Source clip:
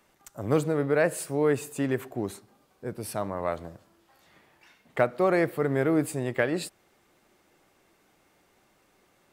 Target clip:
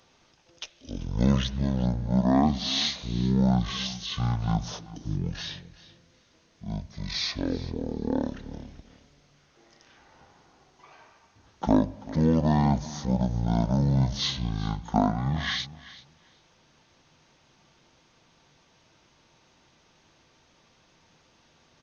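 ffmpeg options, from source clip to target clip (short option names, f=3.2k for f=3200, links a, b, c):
-af "highshelf=f=2.8k:g=9,aecho=1:1:165|330:0.126|0.0201,asetrate=18846,aresample=44100"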